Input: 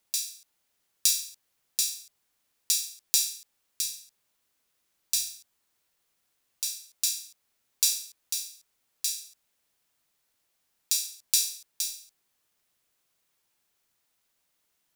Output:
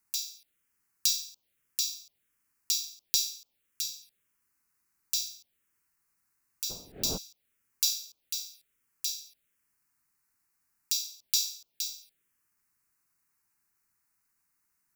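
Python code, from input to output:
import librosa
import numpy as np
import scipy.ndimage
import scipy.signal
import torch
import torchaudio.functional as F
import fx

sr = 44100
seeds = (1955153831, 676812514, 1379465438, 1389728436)

y = fx.dmg_wind(x, sr, seeds[0], corner_hz=580.0, level_db=-39.0, at=(6.69, 7.16), fade=0.02)
y = fx.env_phaser(y, sr, low_hz=580.0, high_hz=1900.0, full_db=-33.0)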